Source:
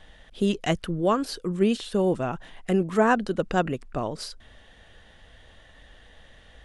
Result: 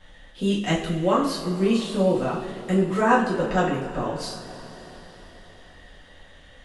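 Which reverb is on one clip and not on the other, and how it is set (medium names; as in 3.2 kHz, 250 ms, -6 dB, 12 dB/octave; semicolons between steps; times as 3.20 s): two-slope reverb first 0.48 s, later 4.6 s, from -18 dB, DRR -7.5 dB; trim -5.5 dB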